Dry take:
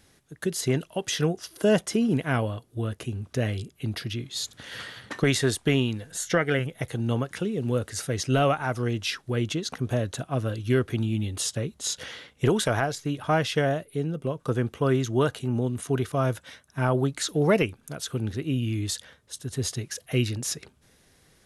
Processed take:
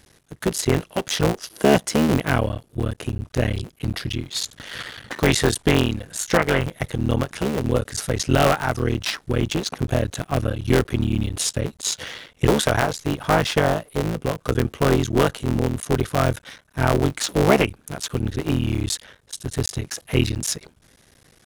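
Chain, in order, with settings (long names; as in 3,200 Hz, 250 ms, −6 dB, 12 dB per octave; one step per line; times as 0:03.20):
sub-harmonics by changed cycles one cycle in 3, muted
level +6.5 dB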